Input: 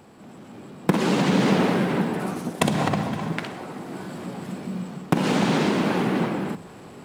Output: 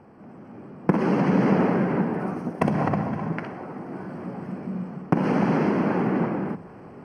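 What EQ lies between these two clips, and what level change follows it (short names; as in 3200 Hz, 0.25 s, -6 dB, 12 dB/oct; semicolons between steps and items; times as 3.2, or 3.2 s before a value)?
running mean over 12 samples; 0.0 dB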